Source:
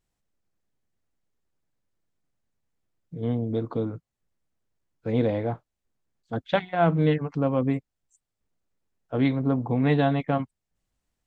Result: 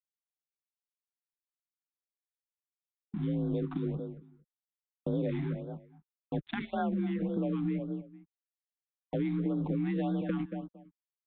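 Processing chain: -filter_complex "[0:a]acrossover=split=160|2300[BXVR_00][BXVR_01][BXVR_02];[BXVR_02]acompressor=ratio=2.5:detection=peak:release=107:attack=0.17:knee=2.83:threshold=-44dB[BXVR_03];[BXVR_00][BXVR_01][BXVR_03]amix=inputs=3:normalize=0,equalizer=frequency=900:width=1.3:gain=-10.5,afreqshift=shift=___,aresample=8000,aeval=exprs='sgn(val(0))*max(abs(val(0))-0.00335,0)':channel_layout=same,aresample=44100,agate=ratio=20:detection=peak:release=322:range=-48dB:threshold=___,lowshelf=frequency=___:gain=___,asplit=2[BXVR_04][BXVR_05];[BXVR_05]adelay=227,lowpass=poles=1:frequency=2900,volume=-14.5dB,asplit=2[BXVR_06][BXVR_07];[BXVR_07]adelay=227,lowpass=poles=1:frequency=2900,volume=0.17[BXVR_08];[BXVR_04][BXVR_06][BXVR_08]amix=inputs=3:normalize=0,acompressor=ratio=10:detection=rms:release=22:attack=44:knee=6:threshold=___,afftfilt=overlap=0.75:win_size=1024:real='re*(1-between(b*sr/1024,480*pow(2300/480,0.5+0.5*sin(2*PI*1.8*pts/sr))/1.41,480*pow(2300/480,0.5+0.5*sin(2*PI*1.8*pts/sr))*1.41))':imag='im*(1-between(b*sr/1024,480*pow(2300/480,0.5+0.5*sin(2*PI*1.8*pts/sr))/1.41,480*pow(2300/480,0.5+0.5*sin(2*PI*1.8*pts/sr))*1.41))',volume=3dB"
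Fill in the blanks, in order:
39, -47dB, 63, 9.5, -36dB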